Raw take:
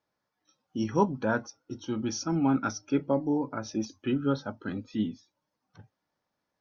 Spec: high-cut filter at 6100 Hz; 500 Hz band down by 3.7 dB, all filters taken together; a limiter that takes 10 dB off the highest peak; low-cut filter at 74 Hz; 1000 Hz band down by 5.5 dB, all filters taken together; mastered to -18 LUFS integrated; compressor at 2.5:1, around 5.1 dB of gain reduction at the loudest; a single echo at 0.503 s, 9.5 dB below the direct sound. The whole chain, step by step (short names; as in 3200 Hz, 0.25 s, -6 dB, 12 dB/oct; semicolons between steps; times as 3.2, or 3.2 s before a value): HPF 74 Hz; LPF 6100 Hz; bell 500 Hz -3.5 dB; bell 1000 Hz -6 dB; compressor 2.5:1, threshold -29 dBFS; limiter -30 dBFS; echo 0.503 s -9.5 dB; gain +22 dB